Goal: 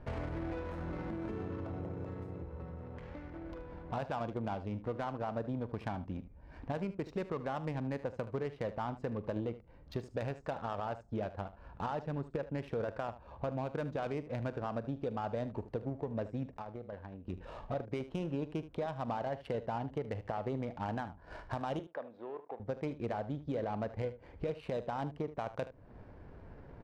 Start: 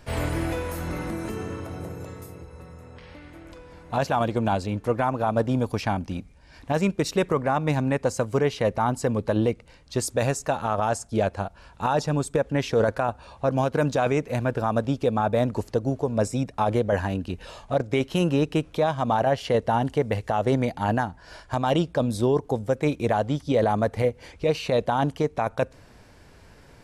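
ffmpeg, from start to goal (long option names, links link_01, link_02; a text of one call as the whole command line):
ffmpeg -i in.wav -filter_complex "[0:a]acompressor=threshold=-39dB:ratio=3,asettb=1/sr,asplit=3[link_01][link_02][link_03];[link_01]atrim=end=16.574[link_04];[link_02]atrim=start=16.57:end=17.26,asetpts=PTS-STARTPTS,afade=type=in:duration=0.004:curve=qsin,afade=type=out:start_time=0.686:duration=0.004:curve=qsin,aeval=exprs='0.0944*(cos(1*acos(clip(val(0)/0.0944,-1,1)))-cos(1*PI/2))+0.0211*(cos(3*acos(clip(val(0)/0.0944,-1,1)))-cos(3*PI/2))':channel_layout=same[link_05];[link_03]atrim=start=17.256[link_06];[link_04][link_05]acrossfade=duration=0.004:curve1=hsin:curve2=qsin[link_07];[link_07][link_06]acrossfade=duration=0.004:curve1=qsin:curve2=hsin,adynamicsmooth=sensitivity=7.5:basefreq=980,asettb=1/sr,asplit=3[link_08][link_09][link_10];[link_08]atrim=end=21.794[link_11];[link_09]atrim=start=21.79:end=22.6,asetpts=PTS-STARTPTS,afade=type=in:duration=0.004:curve=qsin,afade=type=out:start_time=0.806:duration=0.004:curve=qsin,highpass=560,lowpass=2300[link_12];[link_10]atrim=start=22.596[link_13];[link_11][link_12]acrossfade=duration=0.004:curve1=hsin:curve2=qsin[link_14];[link_14][link_13]acrossfade=duration=0.004:curve1=qsin:curve2=hsin,aecho=1:1:43|76:0.133|0.188" out.wav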